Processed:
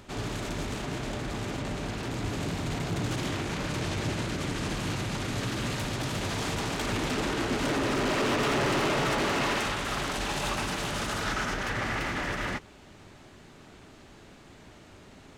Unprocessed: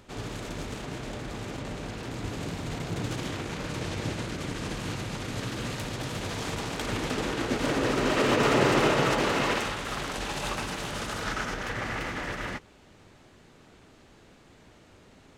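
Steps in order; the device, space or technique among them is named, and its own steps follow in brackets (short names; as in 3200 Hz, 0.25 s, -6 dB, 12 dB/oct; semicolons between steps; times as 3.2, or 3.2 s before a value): saturation between pre-emphasis and de-emphasis (high shelf 9700 Hz +10 dB; soft clip -27.5 dBFS, distortion -8 dB; high shelf 9700 Hz -10 dB); notch 490 Hz, Q 12; gain +4 dB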